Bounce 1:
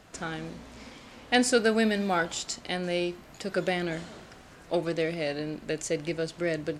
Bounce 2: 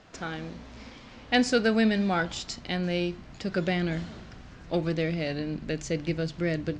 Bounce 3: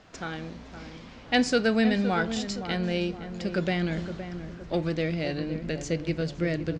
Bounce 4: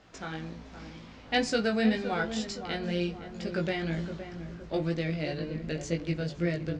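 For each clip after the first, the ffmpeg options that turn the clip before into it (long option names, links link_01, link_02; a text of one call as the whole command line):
ffmpeg -i in.wav -af "asubboost=boost=3.5:cutoff=240,lowpass=frequency=6200:width=0.5412,lowpass=frequency=6200:width=1.3066,bandreject=frequency=50:width_type=h:width=6,bandreject=frequency=100:width_type=h:width=6,bandreject=frequency=150:width_type=h:width=6" out.wav
ffmpeg -i in.wav -filter_complex "[0:a]asplit=2[link_01][link_02];[link_02]adelay=516,lowpass=frequency=1200:poles=1,volume=-9dB,asplit=2[link_03][link_04];[link_04]adelay=516,lowpass=frequency=1200:poles=1,volume=0.47,asplit=2[link_05][link_06];[link_06]adelay=516,lowpass=frequency=1200:poles=1,volume=0.47,asplit=2[link_07][link_08];[link_08]adelay=516,lowpass=frequency=1200:poles=1,volume=0.47,asplit=2[link_09][link_10];[link_10]adelay=516,lowpass=frequency=1200:poles=1,volume=0.47[link_11];[link_01][link_03][link_05][link_07][link_09][link_11]amix=inputs=6:normalize=0" out.wav
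ffmpeg -i in.wav -af "flanger=delay=17.5:depth=2.3:speed=2" out.wav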